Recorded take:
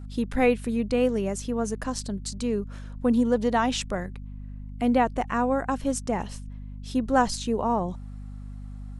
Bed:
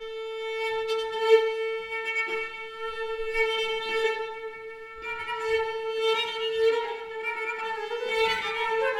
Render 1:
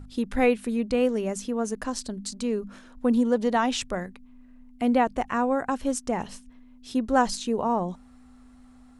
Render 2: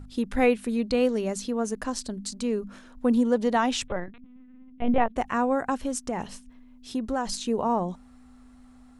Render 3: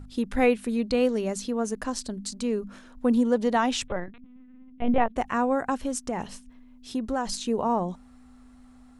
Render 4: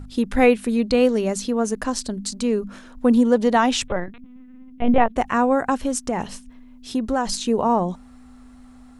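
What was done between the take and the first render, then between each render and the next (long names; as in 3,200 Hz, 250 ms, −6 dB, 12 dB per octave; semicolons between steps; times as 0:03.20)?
mains-hum notches 50/100/150/200 Hz
0:00.73–0:01.53: parametric band 4,200 Hz +8 dB 0.4 octaves; 0:03.88–0:05.16: linear-prediction vocoder at 8 kHz pitch kept; 0:05.81–0:07.34: downward compressor 3 to 1, threshold −25 dBFS
no processing that can be heard
level +6 dB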